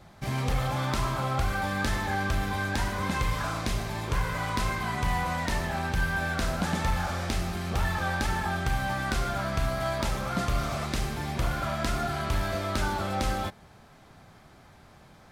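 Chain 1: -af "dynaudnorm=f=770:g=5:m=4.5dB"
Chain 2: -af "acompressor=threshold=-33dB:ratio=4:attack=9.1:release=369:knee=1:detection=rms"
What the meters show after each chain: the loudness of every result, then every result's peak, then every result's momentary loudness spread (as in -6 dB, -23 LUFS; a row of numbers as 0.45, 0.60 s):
-25.5, -37.5 LUFS; -13.5, -24.0 dBFS; 4, 8 LU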